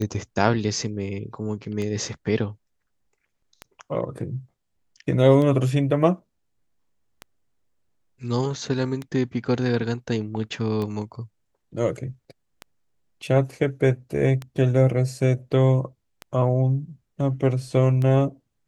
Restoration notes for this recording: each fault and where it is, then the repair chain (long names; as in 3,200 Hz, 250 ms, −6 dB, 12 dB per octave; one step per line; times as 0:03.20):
scratch tick 33 1/3 rpm −17 dBFS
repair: click removal